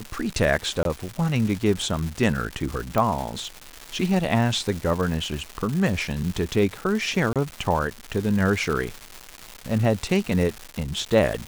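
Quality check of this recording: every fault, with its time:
crackle 420/s -28 dBFS
0.83–0.85 gap 22 ms
2.98 pop -10 dBFS
7.33–7.36 gap 27 ms

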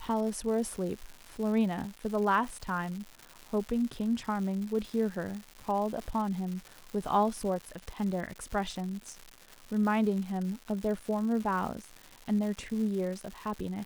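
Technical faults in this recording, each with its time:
crackle 280/s -37 dBFS

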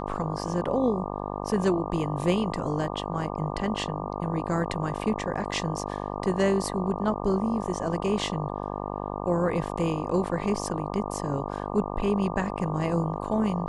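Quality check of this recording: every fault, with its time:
buzz 50 Hz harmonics 24 -33 dBFS

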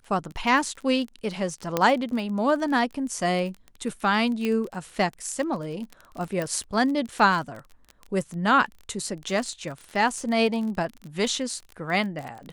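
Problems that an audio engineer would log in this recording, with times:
crackle 28/s -31 dBFS
1.77 pop -8 dBFS
4.45 pop -15 dBFS
6.42 pop -16 dBFS

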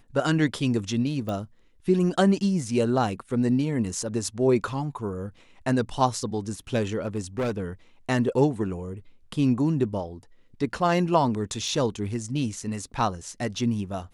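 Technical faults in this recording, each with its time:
1.29 pop -20 dBFS
7.06–7.62 clipped -23 dBFS
11.68 gap 2.9 ms

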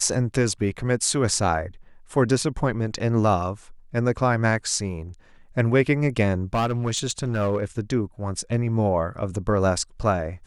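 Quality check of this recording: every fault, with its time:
6.54–7.65 clipped -18 dBFS

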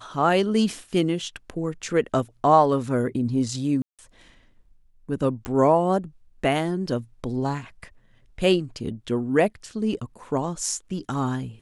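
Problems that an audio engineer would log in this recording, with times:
3.82–3.99 gap 0.167 s
5.45 pop -16 dBFS

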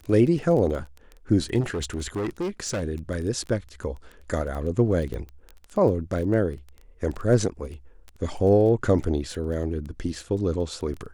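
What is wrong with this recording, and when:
crackle 13/s -31 dBFS
1.6–2.83 clipped -24 dBFS
5.14 pop -22 dBFS

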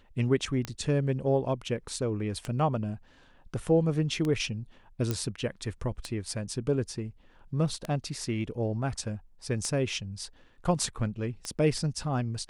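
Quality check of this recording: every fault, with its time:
tick 33 1/3 rpm -18 dBFS
5.11 pop -15 dBFS

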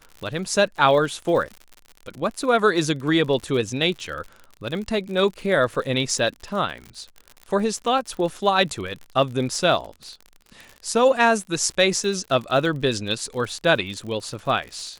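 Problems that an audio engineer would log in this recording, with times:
crackle 63/s -31 dBFS

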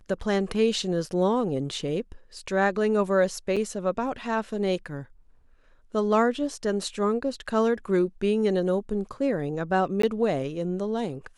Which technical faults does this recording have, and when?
3.56–3.57 gap 6 ms
10.02–10.03 gap 14 ms

